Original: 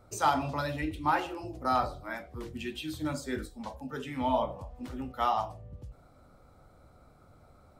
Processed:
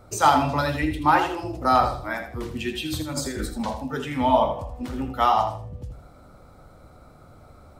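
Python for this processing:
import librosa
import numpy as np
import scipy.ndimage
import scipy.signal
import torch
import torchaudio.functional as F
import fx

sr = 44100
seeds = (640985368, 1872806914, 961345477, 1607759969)

y = fx.over_compress(x, sr, threshold_db=-39.0, ratio=-1.0, at=(2.85, 3.74), fade=0.02)
y = fx.echo_feedback(y, sr, ms=81, feedback_pct=27, wet_db=-9)
y = y * librosa.db_to_amplitude(8.5)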